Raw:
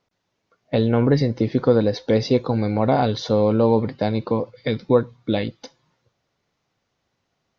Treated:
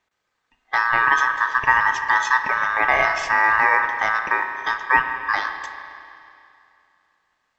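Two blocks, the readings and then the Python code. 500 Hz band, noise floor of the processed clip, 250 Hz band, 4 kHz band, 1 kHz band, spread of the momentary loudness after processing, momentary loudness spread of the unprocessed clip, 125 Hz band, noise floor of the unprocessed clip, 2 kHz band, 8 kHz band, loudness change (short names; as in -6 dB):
-13.5 dB, -75 dBFS, -22.0 dB, -1.0 dB, +10.0 dB, 8 LU, 7 LU, -23.5 dB, -75 dBFS, +20.5 dB, n/a, +1.5 dB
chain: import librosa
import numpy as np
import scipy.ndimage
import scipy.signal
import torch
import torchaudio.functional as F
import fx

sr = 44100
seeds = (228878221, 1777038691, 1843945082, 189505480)

y = scipy.signal.sosfilt(scipy.signal.butter(2, 44.0, 'highpass', fs=sr, output='sos'), x)
y = fx.notch(y, sr, hz=3700.0, q=16.0)
y = fx.rev_spring(y, sr, rt60_s=2.6, pass_ms=(33, 55), chirp_ms=20, drr_db=6.5)
y = y * np.sin(2.0 * np.pi * 1400.0 * np.arange(len(y)) / sr)
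y = fx.quant_float(y, sr, bits=6)
y = F.gain(torch.from_numpy(y), 2.0).numpy()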